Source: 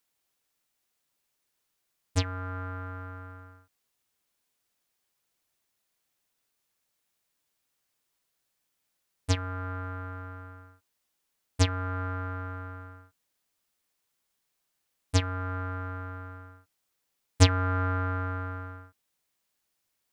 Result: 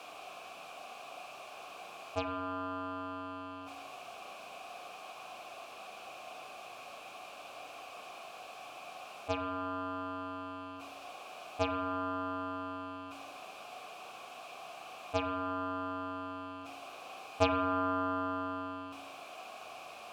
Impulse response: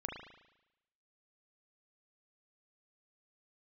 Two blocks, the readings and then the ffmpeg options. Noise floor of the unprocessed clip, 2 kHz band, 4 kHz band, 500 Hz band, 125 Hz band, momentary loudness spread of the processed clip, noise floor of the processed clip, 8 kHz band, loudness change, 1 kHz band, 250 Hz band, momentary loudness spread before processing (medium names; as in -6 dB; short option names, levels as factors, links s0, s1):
-79 dBFS, -4.0 dB, -6.5 dB, +2.0 dB, -18.5 dB, 13 LU, -50 dBFS, -12.5 dB, -8.5 dB, +1.5 dB, -1.0 dB, 18 LU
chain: -filter_complex "[0:a]aeval=exprs='val(0)+0.5*0.0237*sgn(val(0))':c=same,asplit=3[s0][s1][s2];[s0]bandpass=f=730:t=q:w=8,volume=1[s3];[s1]bandpass=f=1090:t=q:w=8,volume=0.501[s4];[s2]bandpass=f=2440:t=q:w=8,volume=0.355[s5];[s3][s4][s5]amix=inputs=3:normalize=0,asplit=2[s6][s7];[1:a]atrim=start_sample=2205,lowshelf=f=480:g=10.5[s8];[s7][s8]afir=irnorm=-1:irlink=0,volume=0.75[s9];[s6][s9]amix=inputs=2:normalize=0,volume=1.78"